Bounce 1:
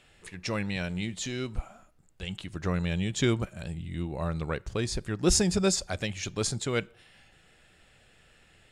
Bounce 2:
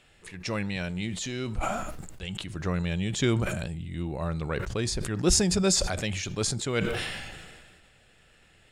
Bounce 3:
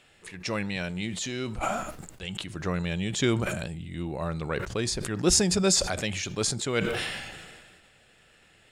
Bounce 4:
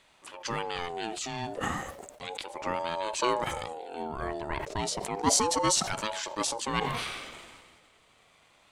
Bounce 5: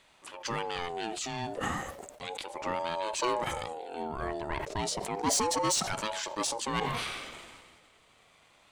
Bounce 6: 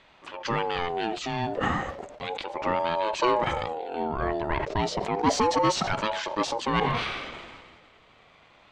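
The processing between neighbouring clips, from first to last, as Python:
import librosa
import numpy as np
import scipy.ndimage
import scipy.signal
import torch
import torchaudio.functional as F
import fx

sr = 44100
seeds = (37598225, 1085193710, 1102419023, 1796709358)

y1 = fx.sustainer(x, sr, db_per_s=32.0)
y2 = fx.low_shelf(y1, sr, hz=95.0, db=-9.5)
y2 = y2 * 10.0 ** (1.5 / 20.0)
y3 = fx.ring_lfo(y2, sr, carrier_hz=630.0, swing_pct=20, hz=0.33)
y4 = 10.0 ** (-20.5 / 20.0) * np.tanh(y3 / 10.0 ** (-20.5 / 20.0))
y5 = fx.air_absorb(y4, sr, metres=180.0)
y5 = y5 * 10.0 ** (7.5 / 20.0)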